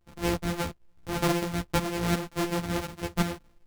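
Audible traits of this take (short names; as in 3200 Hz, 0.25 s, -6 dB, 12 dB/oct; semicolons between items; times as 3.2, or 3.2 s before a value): a buzz of ramps at a fixed pitch in blocks of 256 samples; tremolo saw up 2.8 Hz, depth 65%; a shimmering, thickened sound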